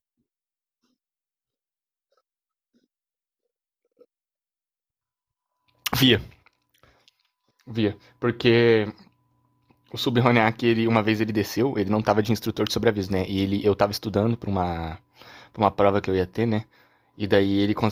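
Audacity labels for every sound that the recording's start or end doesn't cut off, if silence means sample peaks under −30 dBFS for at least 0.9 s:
5.860000	6.210000	sound
7.710000	8.900000	sound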